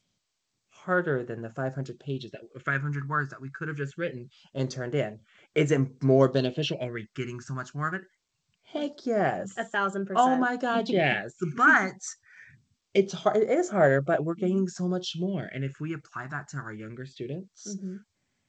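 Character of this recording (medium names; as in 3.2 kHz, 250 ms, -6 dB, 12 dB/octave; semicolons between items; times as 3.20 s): phasing stages 4, 0.23 Hz, lowest notch 520–4800 Hz; G.722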